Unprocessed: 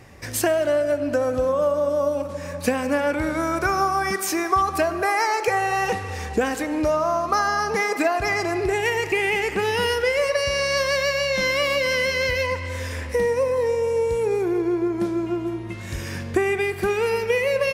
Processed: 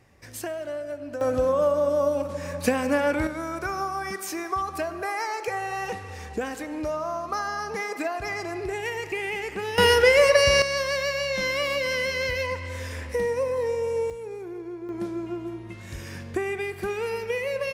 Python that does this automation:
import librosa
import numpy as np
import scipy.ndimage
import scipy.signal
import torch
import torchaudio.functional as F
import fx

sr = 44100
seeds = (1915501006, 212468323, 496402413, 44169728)

y = fx.gain(x, sr, db=fx.steps((0.0, -12.0), (1.21, -1.0), (3.27, -8.0), (9.78, 4.5), (10.62, -4.5), (14.1, -14.0), (14.89, -7.0)))